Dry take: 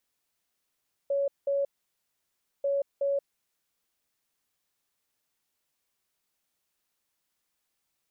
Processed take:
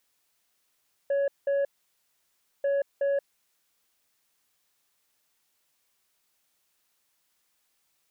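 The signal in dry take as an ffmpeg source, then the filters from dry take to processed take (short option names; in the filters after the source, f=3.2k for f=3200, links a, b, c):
-f lavfi -i "aevalsrc='0.0631*sin(2*PI*559*t)*clip(min(mod(mod(t,1.54),0.37),0.18-mod(mod(t,1.54),0.37))/0.005,0,1)*lt(mod(t,1.54),0.74)':d=3.08:s=44100"
-filter_complex "[0:a]lowshelf=f=500:g=-5,asplit=2[a][b];[b]aeval=exprs='0.0501*sin(PI/2*1.58*val(0)/0.0501)':c=same,volume=-6dB[c];[a][c]amix=inputs=2:normalize=0"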